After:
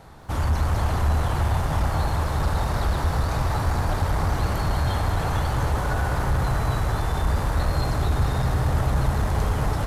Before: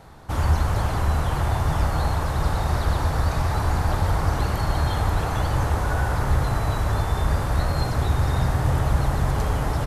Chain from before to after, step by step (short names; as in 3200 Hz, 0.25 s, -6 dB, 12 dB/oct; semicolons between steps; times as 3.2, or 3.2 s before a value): soft clip -15.5 dBFS, distortion -17 dB; lo-fi delay 0.213 s, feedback 80%, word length 9-bit, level -10.5 dB